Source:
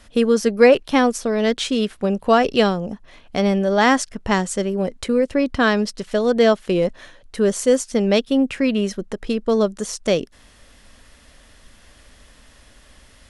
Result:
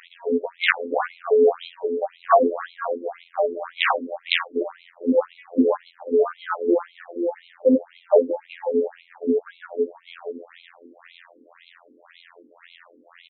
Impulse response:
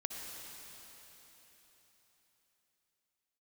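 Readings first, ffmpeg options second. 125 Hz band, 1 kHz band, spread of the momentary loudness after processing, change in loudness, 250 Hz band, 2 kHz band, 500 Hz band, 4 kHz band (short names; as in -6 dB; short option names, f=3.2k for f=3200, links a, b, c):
under -25 dB, -3.0 dB, 12 LU, -4.0 dB, -7.0 dB, -3.0 dB, -3.0 dB, -4.5 dB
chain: -filter_complex "[0:a]aeval=exprs='val(0)+0.5*0.0891*sgn(val(0))':c=same,asplit=2[a][b];[b]bass=f=250:g=14,treble=f=4k:g=13[c];[1:a]atrim=start_sample=2205[d];[c][d]afir=irnorm=-1:irlink=0,volume=-17.5dB[e];[a][e]amix=inputs=2:normalize=0,acrusher=bits=4:mix=0:aa=0.5,highshelf=f=6.1k:g=-7,asplit=2[f][g];[g]adelay=478.1,volume=-10dB,highshelf=f=4k:g=-10.8[h];[f][h]amix=inputs=2:normalize=0,afwtdn=0.1,afftfilt=real='hypot(re,im)*cos(PI*b)':imag='0':win_size=2048:overlap=0.75,aeval=exprs='val(0)+0.00447*(sin(2*PI*60*n/s)+sin(2*PI*2*60*n/s)/2+sin(2*PI*3*60*n/s)/3+sin(2*PI*4*60*n/s)/4+sin(2*PI*5*60*n/s)/5)':c=same,aeval=exprs='(mod(1.5*val(0)+1,2)-1)/1.5':c=same,afftfilt=real='re*between(b*sr/1024,340*pow(3000/340,0.5+0.5*sin(2*PI*1.9*pts/sr))/1.41,340*pow(3000/340,0.5+0.5*sin(2*PI*1.9*pts/sr))*1.41)':imag='im*between(b*sr/1024,340*pow(3000/340,0.5+0.5*sin(2*PI*1.9*pts/sr))/1.41,340*pow(3000/340,0.5+0.5*sin(2*PI*1.9*pts/sr))*1.41)':win_size=1024:overlap=0.75,volume=5dB"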